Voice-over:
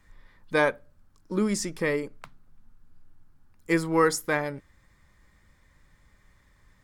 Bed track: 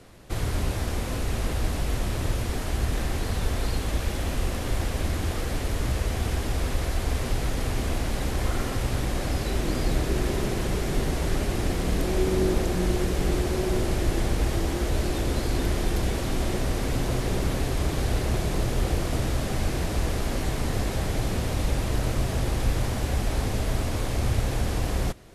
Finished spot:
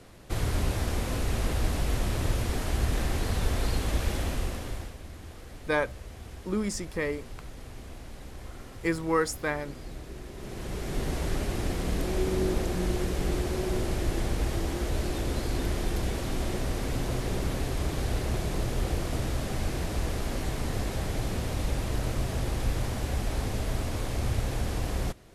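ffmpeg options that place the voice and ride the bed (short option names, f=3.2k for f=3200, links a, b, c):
-filter_complex "[0:a]adelay=5150,volume=-4dB[a];[1:a]volume=11.5dB,afade=t=out:st=4.14:d=0.83:silence=0.16788,afade=t=in:st=10.34:d=0.79:silence=0.237137[b];[a][b]amix=inputs=2:normalize=0"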